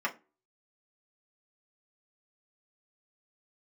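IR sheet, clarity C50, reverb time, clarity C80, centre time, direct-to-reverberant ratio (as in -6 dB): 18.0 dB, 0.30 s, 25.0 dB, 9 ms, -3.0 dB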